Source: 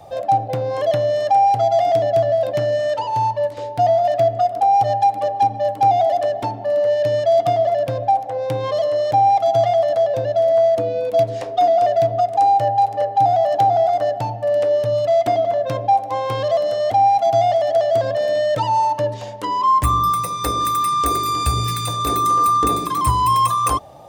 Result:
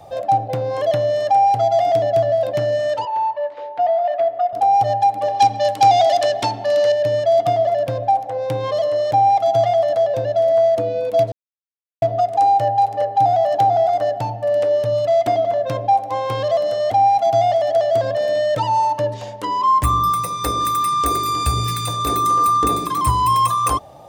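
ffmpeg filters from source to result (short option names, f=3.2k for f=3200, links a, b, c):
-filter_complex "[0:a]asettb=1/sr,asplit=3[a][b][c];[a]atrim=end=3.054[d];[b]atrim=start=3.05:end=4.53,asetpts=PTS-STARTPTS,afade=t=in:d=0.004:c=qsin,afade=t=out:st=1.476:d=0.004:c=qsin,highpass=590,lowpass=2.4k[e];[c]atrim=start=4.526[f];[d][e]acrossfade=d=0.004:c1=hsin:c2=qsin[g];[g][f]acrossfade=d=0.004:c1=qsin:c2=hsin,asettb=1/sr,asplit=3[h][i][j];[h]atrim=end=5.284[k];[i]atrim=start=5.28:end=6.92,asetpts=PTS-STARTPTS,afade=t=in:d=0.004:c=qsin,afade=t=out:st=1.636:d=0.004:c=qsin,equalizer=f=5.2k:t=o:w=2.9:g=15[l];[j]atrim=start=6.916[m];[k][l]acrossfade=d=0.004:c1=hsin:c2=qsin[n];[n][m]acrossfade=d=0.004:c1=qsin:c2=hsin,asplit=3[o][p][q];[o]atrim=end=11.32,asetpts=PTS-STARTPTS,afade=t=out:st=11.316:d=0.004:c=hsin[r];[p]atrim=start=11.32:end=12.02,asetpts=PTS-STARTPTS,volume=0[s];[q]atrim=start=12.02,asetpts=PTS-STARTPTS,afade=t=in:d=0.004:c=hsin[t];[r][s][t]concat=n=3:v=0:a=1"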